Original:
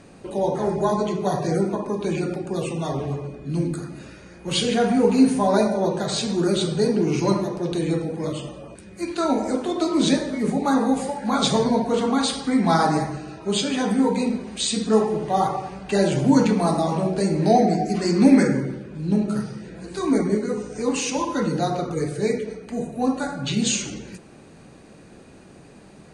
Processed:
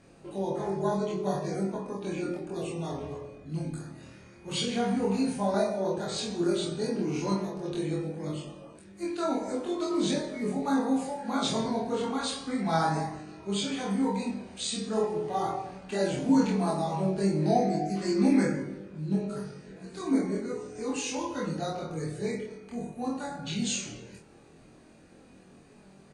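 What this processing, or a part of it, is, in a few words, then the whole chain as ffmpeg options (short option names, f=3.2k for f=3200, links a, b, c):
double-tracked vocal: -filter_complex "[0:a]asplit=2[a][b];[b]adelay=26,volume=-2.5dB[c];[a][c]amix=inputs=2:normalize=0,flanger=delay=20:depth=5.1:speed=0.11,asettb=1/sr,asplit=3[d][e][f];[d]atrim=end=5.544[g];[e]atrim=start=5.54:end=5.98,asetpts=PTS-STARTPTS,afade=t=in:d=0.004:c=qsin,afade=t=out:st=0.436:d=0.004:c=qsin,highpass=130[h];[f]atrim=start=5.976[i];[g][h]acrossfade=d=0.004:c1=hsin:c2=qsin[j];[j][i]acrossfade=d=0.004:c1=qsin:c2=hsin,volume=-7dB"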